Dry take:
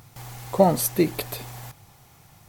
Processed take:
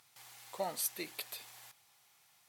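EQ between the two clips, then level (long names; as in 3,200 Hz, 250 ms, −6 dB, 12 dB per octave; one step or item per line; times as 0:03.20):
resonant band-pass 5,800 Hz, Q 1.1
parametric band 6,100 Hz −11 dB 1.4 octaves
+1.0 dB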